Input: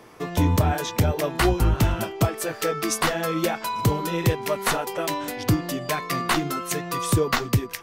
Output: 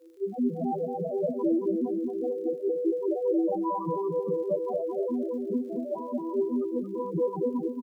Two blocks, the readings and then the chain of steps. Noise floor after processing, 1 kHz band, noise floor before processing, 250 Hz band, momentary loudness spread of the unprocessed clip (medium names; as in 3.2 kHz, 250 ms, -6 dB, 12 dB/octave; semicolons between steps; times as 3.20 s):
-38 dBFS, -10.0 dB, -39 dBFS, -1.5 dB, 6 LU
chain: vocoder on a broken chord minor triad, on E3, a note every 158 ms; Bessel high-pass 380 Hz, order 4; tilt shelf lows +5.5 dB, about 810 Hz; in parallel at -8 dB: sine folder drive 11 dB, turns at -12 dBFS; on the sum: loudest bins only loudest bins 2; word length cut 12-bit, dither triangular; crackle 59 per s -45 dBFS; on a send: feedback delay 226 ms, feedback 35%, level -5 dB; on the sum: trim -5.5 dB